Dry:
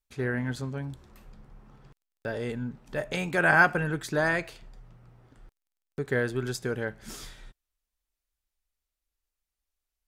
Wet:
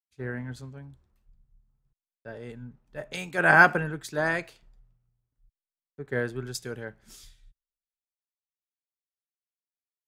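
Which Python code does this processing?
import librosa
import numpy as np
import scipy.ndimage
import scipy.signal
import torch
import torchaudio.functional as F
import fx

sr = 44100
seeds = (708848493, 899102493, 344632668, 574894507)

y = fx.band_widen(x, sr, depth_pct=100)
y = y * librosa.db_to_amplitude(-5.5)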